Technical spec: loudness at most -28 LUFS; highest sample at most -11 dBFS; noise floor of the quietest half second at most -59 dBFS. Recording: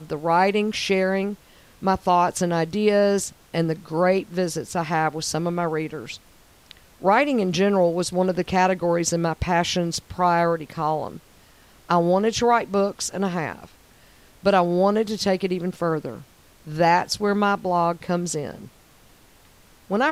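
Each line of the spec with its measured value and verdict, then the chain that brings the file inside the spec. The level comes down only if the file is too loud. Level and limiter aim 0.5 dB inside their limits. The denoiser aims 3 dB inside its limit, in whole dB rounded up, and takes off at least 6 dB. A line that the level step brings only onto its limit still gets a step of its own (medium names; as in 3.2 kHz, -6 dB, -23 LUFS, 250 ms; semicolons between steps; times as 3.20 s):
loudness -22.5 LUFS: fail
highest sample -5.0 dBFS: fail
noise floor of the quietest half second -53 dBFS: fail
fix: noise reduction 6 dB, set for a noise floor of -53 dBFS; trim -6 dB; peak limiter -11.5 dBFS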